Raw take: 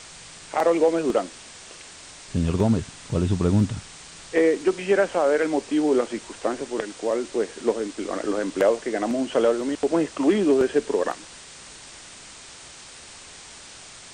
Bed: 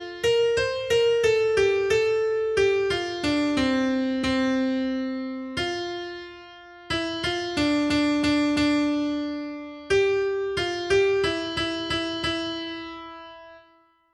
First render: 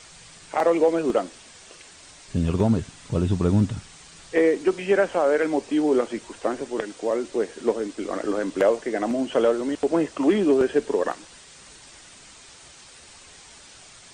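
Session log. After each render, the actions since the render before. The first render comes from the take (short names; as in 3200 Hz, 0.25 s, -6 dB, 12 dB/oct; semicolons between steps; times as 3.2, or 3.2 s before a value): denoiser 6 dB, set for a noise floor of -44 dBFS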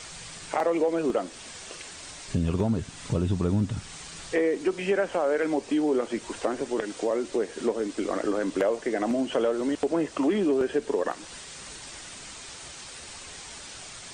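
in parallel at -2 dB: limiter -16.5 dBFS, peak gain reduction 7 dB; on the sum: compressor 2:1, threshold -28 dBFS, peak gain reduction 9.5 dB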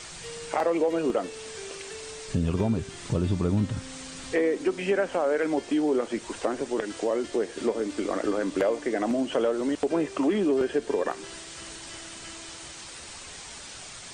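add bed -21 dB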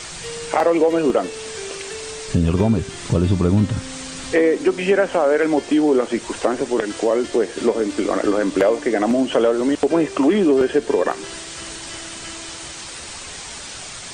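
gain +8.5 dB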